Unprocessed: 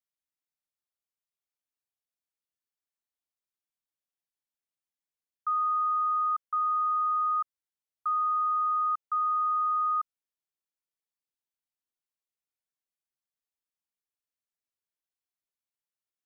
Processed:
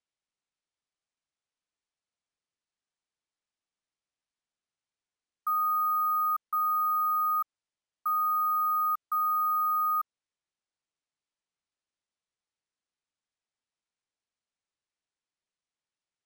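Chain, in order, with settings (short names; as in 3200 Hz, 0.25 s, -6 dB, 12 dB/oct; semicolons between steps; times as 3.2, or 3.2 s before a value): sample-and-hold 3×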